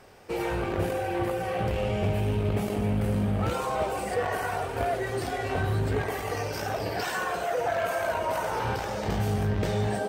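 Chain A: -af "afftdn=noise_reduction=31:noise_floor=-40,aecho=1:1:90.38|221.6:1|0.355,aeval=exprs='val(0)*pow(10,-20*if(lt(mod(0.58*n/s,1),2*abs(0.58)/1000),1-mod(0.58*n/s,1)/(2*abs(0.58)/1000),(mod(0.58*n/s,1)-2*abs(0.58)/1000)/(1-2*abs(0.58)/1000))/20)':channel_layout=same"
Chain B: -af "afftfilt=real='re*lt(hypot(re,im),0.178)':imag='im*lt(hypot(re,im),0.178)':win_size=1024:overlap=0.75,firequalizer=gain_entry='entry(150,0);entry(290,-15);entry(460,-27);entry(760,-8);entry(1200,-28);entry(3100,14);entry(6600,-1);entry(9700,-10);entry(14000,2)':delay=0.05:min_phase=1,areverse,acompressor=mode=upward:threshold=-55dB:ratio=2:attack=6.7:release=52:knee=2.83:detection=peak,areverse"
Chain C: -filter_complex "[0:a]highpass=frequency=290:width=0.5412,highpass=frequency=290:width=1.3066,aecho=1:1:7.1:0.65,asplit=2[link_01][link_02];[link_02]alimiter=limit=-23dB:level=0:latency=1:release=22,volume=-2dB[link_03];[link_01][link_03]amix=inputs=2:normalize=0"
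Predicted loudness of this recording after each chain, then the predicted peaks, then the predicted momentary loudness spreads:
−32.5, −34.5, −25.5 LKFS; −12.5, −16.5, −11.5 dBFS; 14, 4, 3 LU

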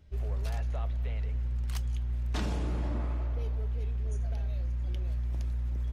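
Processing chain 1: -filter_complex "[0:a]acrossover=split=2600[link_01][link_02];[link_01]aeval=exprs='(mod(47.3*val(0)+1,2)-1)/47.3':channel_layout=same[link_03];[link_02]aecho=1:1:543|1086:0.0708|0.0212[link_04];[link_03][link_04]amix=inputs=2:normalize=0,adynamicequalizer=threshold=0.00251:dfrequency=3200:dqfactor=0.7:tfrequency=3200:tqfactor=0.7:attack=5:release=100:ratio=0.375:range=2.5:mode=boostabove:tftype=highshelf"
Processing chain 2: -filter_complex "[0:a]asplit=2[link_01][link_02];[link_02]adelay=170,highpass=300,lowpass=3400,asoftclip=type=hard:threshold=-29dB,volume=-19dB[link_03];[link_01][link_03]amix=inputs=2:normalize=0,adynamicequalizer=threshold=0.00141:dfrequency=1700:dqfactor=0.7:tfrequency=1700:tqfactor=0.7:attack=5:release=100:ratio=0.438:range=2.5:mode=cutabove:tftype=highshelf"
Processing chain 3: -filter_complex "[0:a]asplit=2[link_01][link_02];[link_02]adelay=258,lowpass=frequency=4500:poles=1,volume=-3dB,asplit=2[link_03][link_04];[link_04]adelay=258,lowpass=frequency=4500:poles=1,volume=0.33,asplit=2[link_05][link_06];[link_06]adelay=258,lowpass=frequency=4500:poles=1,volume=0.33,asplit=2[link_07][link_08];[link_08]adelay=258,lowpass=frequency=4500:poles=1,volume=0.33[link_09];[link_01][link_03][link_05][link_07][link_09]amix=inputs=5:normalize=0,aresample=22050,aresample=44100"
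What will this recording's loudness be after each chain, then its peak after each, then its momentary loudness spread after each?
−37.5, −34.0, −36.5 LKFS; −23.0, −20.5, −21.5 dBFS; 2, 1, 3 LU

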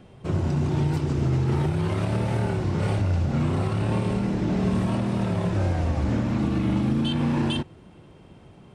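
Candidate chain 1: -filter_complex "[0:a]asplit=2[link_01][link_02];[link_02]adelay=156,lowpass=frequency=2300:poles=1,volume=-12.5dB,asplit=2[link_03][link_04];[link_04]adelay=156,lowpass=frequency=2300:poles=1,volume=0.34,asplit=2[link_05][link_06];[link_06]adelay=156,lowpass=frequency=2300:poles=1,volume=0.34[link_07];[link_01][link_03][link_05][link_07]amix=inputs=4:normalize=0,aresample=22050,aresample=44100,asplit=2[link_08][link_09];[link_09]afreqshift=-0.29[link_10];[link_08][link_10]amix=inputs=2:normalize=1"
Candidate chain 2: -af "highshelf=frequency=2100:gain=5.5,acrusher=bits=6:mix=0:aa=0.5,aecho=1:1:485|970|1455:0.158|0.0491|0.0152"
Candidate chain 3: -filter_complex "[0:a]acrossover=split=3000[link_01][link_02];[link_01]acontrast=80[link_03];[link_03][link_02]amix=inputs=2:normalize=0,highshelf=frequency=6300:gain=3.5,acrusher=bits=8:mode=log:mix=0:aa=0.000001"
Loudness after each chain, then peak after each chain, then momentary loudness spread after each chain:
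−27.5, −24.5, −18.0 LKFS; −15.0, −12.0, −7.5 dBFS; 4, 3, 2 LU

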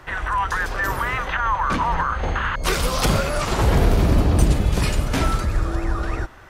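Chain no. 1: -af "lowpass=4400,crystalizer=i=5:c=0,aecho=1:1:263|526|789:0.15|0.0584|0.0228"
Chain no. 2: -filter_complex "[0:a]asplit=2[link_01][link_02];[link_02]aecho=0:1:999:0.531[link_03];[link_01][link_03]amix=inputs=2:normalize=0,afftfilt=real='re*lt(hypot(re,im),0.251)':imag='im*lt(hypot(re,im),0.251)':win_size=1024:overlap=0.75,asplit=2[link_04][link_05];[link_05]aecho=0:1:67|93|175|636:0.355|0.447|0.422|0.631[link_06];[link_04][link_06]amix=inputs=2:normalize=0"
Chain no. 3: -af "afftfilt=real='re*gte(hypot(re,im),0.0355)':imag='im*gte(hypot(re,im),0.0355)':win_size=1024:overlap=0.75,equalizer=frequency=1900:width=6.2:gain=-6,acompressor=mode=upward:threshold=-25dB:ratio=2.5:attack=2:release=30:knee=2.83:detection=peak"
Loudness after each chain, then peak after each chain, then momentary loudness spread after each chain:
−19.0, −24.0, −22.0 LKFS; −2.0, −8.0, −2.0 dBFS; 6, 5, 7 LU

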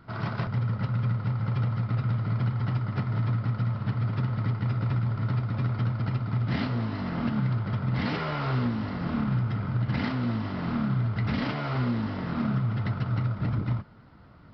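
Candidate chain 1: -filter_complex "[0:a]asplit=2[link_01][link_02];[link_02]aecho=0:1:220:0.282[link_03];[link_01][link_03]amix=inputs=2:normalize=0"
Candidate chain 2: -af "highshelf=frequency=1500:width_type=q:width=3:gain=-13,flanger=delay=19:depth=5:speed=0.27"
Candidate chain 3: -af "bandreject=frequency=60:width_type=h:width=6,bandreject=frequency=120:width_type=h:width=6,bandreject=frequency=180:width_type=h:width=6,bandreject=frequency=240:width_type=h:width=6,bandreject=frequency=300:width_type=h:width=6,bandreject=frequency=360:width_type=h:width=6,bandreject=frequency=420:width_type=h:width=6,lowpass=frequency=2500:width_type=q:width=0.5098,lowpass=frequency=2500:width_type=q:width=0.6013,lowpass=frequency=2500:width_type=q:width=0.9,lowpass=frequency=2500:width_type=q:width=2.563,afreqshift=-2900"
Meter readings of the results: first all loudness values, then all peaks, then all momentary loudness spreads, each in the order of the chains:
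−28.5, −31.5, −26.0 LKFS; −15.5, −18.5, −15.5 dBFS; 3, 4, 3 LU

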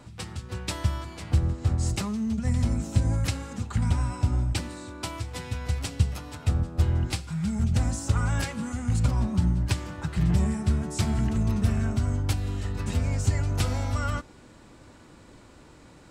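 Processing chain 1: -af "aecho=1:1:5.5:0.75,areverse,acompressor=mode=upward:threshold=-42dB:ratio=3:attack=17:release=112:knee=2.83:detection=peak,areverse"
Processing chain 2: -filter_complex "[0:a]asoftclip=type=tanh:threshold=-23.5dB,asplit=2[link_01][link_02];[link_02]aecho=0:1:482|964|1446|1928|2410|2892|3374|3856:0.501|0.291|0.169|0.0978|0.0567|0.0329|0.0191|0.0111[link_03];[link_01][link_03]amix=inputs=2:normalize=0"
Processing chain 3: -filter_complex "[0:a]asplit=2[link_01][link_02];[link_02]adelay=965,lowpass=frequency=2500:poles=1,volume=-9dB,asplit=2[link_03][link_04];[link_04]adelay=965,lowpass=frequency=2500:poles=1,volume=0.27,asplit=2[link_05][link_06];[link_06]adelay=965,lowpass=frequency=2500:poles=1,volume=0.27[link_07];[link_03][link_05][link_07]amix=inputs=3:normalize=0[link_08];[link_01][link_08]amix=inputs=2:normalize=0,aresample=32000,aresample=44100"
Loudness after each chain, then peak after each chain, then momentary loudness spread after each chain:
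−28.5, −30.0, −27.5 LKFS; −11.0, −17.5, −9.0 dBFS; 15, 8, 11 LU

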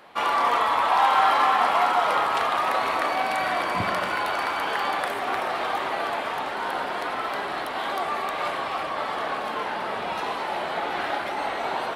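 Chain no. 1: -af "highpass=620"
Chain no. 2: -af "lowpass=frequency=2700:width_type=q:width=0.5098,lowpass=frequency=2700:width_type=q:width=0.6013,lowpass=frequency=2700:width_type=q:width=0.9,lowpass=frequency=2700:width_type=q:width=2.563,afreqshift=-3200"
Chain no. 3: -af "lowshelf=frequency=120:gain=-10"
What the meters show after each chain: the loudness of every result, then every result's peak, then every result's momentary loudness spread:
−25.5, −22.5, −25.0 LKFS; −9.0, −9.0, −9.5 dBFS; 9, 9, 9 LU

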